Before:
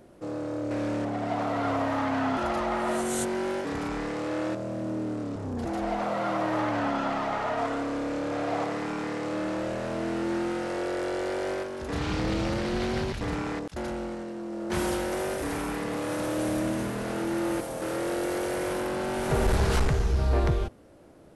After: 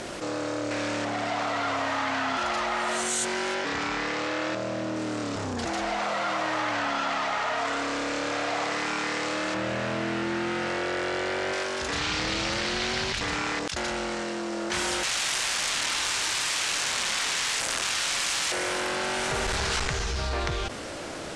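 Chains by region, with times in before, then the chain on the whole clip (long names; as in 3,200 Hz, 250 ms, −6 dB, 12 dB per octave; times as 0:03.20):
0:03.54–0:04.96: high-pass filter 46 Hz + high-frequency loss of the air 69 metres
0:09.54–0:11.53: high-pass filter 80 Hz + bass and treble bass +10 dB, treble −8 dB
0:15.03–0:18.52: low-shelf EQ 100 Hz +8.5 dB + wrap-around overflow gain 28.5 dB
whole clip: low-pass filter 8,100 Hz 24 dB per octave; tilt shelving filter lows −9.5 dB; envelope flattener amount 70%; level −2 dB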